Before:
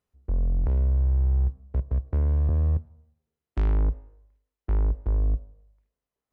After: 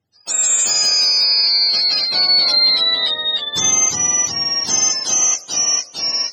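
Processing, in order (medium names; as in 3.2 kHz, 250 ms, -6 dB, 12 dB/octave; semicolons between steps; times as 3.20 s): spectrum inverted on a logarithmic axis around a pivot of 570 Hz; ever faster or slower copies 137 ms, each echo -1 st, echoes 3; loudness maximiser +17 dB; trim -6.5 dB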